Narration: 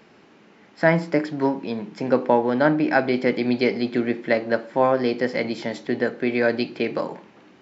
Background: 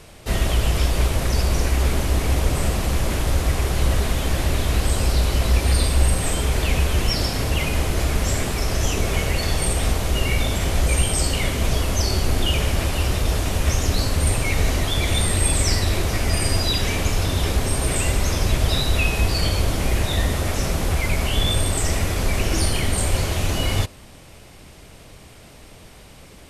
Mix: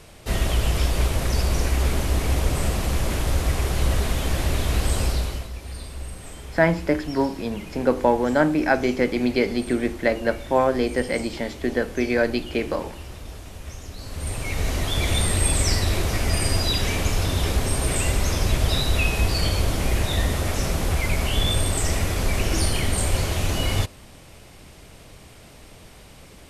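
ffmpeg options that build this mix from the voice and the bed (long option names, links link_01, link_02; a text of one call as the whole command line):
ffmpeg -i stem1.wav -i stem2.wav -filter_complex "[0:a]adelay=5750,volume=-0.5dB[link_01];[1:a]volume=13.5dB,afade=type=out:start_time=5.01:duration=0.48:silence=0.177828,afade=type=in:start_time=13.98:duration=1.07:silence=0.16788[link_02];[link_01][link_02]amix=inputs=2:normalize=0" out.wav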